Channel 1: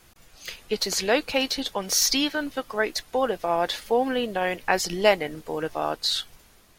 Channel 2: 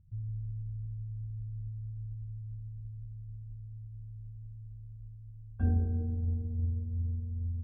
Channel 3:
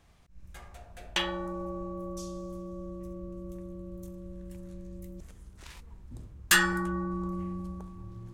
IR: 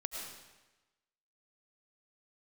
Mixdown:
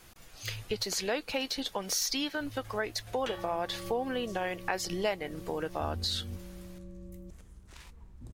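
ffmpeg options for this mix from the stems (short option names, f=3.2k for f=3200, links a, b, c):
-filter_complex "[0:a]volume=0dB,asplit=2[a][b];[1:a]adelay=200,volume=-3.5dB,asplit=3[c][d][e];[c]atrim=end=0.83,asetpts=PTS-STARTPTS,afade=t=out:st=0.826:d=0.004:c=hsin[f];[d]atrim=start=0.83:end=2.4,asetpts=PTS-STARTPTS,volume=0[g];[e]atrim=start=2.4,asetpts=PTS-STARTPTS,afade=t=in:d=0.004:c=hsin[h];[f][g][h]concat=n=3:v=0:a=1[i];[2:a]adelay=2100,volume=-3dB[j];[b]apad=whole_len=345668[k];[i][k]sidechaingate=range=-33dB:threshold=-44dB:ratio=16:detection=peak[l];[a][l][j]amix=inputs=3:normalize=0,acompressor=threshold=-33dB:ratio=2.5"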